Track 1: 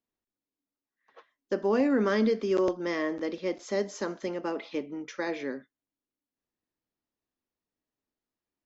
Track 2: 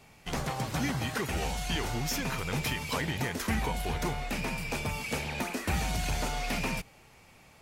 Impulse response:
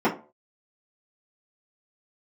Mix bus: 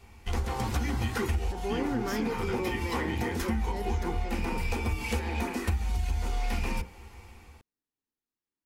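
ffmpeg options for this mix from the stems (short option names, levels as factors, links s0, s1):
-filter_complex "[0:a]volume=0.562,asplit=2[s0][s1];[1:a]lowshelf=f=110:t=q:w=3:g=13,dynaudnorm=f=220:g=5:m=1.68,volume=0.708,asplit=2[s2][s3];[s3]volume=0.158[s4];[s1]apad=whole_len=335613[s5];[s2][s5]sidechaincompress=threshold=0.0141:ratio=8:attack=6.5:release=307[s6];[2:a]atrim=start_sample=2205[s7];[s4][s7]afir=irnorm=-1:irlink=0[s8];[s0][s6][s8]amix=inputs=3:normalize=0,equalizer=f=610:t=o:w=0.28:g=-11,acompressor=threshold=0.0562:ratio=12"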